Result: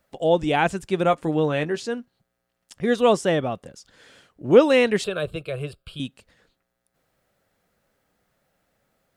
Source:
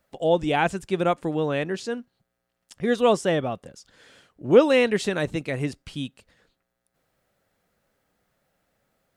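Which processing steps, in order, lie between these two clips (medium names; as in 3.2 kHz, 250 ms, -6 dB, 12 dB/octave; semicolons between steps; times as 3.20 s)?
1.03–1.81 s: doubling 13 ms -9 dB; 5.04–6.00 s: static phaser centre 1.3 kHz, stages 8; trim +1.5 dB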